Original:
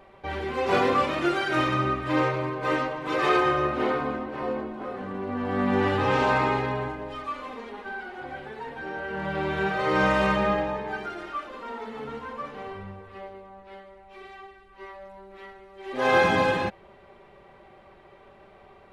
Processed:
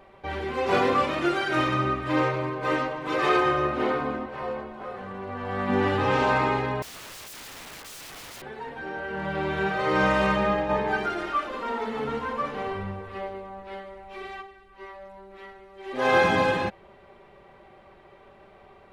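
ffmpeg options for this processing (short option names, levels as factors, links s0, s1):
-filter_complex "[0:a]asettb=1/sr,asplit=3[s0][s1][s2];[s0]atrim=end=4.264[s3];[s1]atrim=start=4.26:end=5.69,asetpts=PTS-STARTPTS,afade=t=in:d=0.004:c=qsin,afade=t=out:st=1.426:d=0.004:c=qsin,equalizer=f=280:t=o:w=0.65:g=-13[s4];[s2]atrim=start=5.686[s5];[s3][s4]acrossfade=d=0.004:c1=hsin:c2=qsin[s6];[s6][s5]acrossfade=d=0.004:c1=qsin:c2=hsin,asettb=1/sr,asplit=3[s7][s8][s9];[s7]atrim=end=6.824[s10];[s8]atrim=start=6.82:end=8.42,asetpts=PTS-STARTPTS,afade=t=in:d=0.004:c=qsin,afade=t=out:st=1.596:d=0.004:c=qsin,aeval=exprs='(mod(75*val(0)+1,2)-1)/75':c=same[s11];[s9]atrim=start=8.416[s12];[s10][s11]acrossfade=d=0.004:c1=hsin:c2=qsin[s13];[s13][s12]acrossfade=d=0.004:c1=qsin:c2=hsin,asplit=3[s14][s15][s16];[s14]afade=t=out:st=10.69:d=0.02[s17];[s15]acontrast=63,afade=t=in:st=10.69:d=0.02,afade=t=out:st=14.41:d=0.02[s18];[s16]afade=t=in:st=14.41:d=0.02[s19];[s17][s18][s19]amix=inputs=3:normalize=0"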